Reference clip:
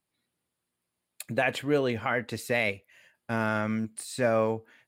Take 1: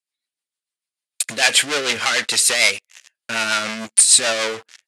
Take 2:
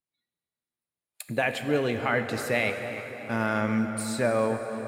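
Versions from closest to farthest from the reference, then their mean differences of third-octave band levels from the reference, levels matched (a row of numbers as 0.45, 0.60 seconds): 2, 1; 7.5, 10.5 decibels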